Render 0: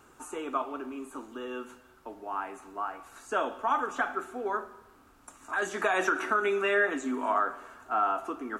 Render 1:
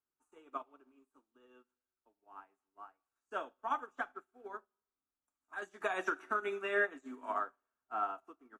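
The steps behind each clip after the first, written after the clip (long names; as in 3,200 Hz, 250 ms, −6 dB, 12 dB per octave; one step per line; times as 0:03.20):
expander for the loud parts 2.5 to 1, over −47 dBFS
level −5 dB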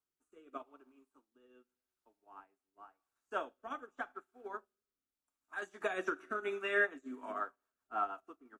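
rotating-speaker cabinet horn 0.85 Hz, later 6 Hz, at 0:06.73
level +2.5 dB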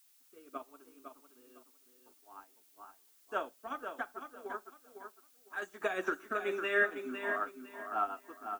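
repeating echo 505 ms, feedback 24%, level −7.5 dB
background noise blue −68 dBFS
level +2 dB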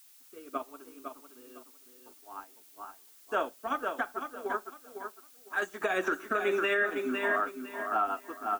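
brickwall limiter −27.5 dBFS, peak gain reduction 10 dB
level +8.5 dB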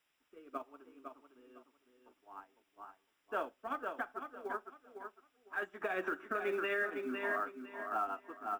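Savitzky-Golay smoothing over 25 samples
floating-point word with a short mantissa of 4 bits
level −7 dB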